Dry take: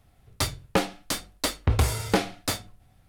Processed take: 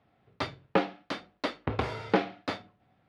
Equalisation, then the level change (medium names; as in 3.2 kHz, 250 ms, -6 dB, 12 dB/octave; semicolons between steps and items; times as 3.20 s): high-pass 200 Hz 12 dB/octave; low-pass 9.5 kHz 12 dB/octave; distance through air 320 m; 0.0 dB